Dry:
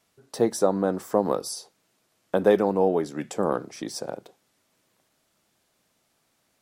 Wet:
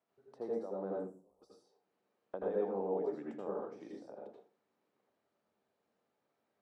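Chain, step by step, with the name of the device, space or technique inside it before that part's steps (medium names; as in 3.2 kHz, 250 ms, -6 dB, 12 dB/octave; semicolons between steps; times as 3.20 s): 0.97–1.42 s: inverse Chebyshev band-stop 110–4100 Hz, stop band 40 dB; differentiator; television next door (compression 5:1, threshold -48 dBFS, peak gain reduction 16.5 dB; low-pass 570 Hz 12 dB/octave; reverberation RT60 0.35 s, pre-delay 76 ms, DRR -3.5 dB); trim +13.5 dB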